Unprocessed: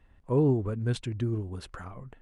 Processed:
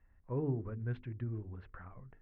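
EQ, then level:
transistor ladder low-pass 2,300 Hz, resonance 40%
low-shelf EQ 160 Hz +7.5 dB
mains-hum notches 50/100/150/200/250/300/350/400/450 Hz
−4.5 dB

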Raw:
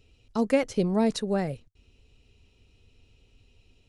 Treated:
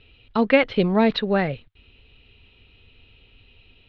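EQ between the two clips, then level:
Butterworth low-pass 3,800 Hz 48 dB per octave
parametric band 1,600 Hz +5 dB 1.8 octaves
high-shelf EQ 2,600 Hz +11 dB
+4.5 dB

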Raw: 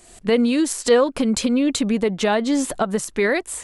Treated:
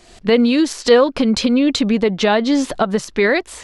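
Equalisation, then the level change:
high shelf with overshoot 6,600 Hz −10 dB, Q 1.5
+4.0 dB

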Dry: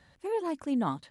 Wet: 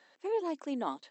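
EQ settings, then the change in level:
high-pass filter 310 Hz 24 dB per octave
dynamic equaliser 1,500 Hz, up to −6 dB, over −47 dBFS, Q 1.3
linear-phase brick-wall low-pass 8,000 Hz
0.0 dB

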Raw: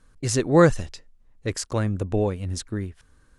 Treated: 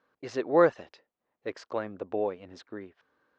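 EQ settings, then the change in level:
band-pass filter 350–5,900 Hz
high-frequency loss of the air 200 metres
parametric band 680 Hz +5 dB 1.7 octaves
−6.0 dB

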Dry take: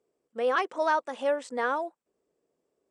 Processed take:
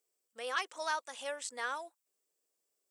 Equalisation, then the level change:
first-order pre-emphasis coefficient 0.97
+7.0 dB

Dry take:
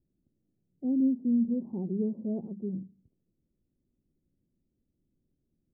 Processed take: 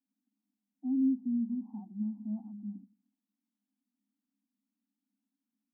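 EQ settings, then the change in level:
Chebyshev high-pass with heavy ripple 200 Hz, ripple 6 dB
Chebyshev band-stop filter 270–780 Hz, order 3
0.0 dB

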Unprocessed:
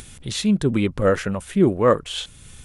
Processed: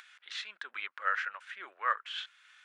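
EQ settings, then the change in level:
four-pole ladder high-pass 1,300 Hz, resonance 50%
head-to-tape spacing loss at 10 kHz 41 dB
high-shelf EQ 2,900 Hz +10.5 dB
+5.5 dB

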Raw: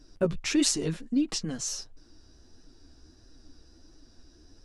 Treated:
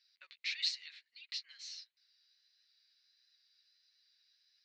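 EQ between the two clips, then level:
four-pole ladder high-pass 1,900 Hz, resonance 65%
transistor ladder low-pass 4,500 Hz, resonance 75%
+6.5 dB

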